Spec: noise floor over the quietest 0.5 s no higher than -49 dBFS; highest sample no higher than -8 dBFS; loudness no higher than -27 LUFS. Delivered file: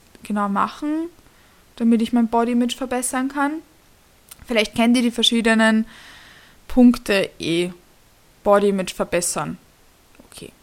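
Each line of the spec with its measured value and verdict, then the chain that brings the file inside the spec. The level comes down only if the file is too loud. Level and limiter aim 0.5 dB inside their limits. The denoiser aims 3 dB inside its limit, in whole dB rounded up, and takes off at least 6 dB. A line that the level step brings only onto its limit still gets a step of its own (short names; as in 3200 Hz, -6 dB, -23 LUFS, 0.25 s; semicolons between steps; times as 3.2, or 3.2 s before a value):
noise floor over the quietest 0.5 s -53 dBFS: OK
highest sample -2.5 dBFS: fail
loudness -19.5 LUFS: fail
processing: gain -8 dB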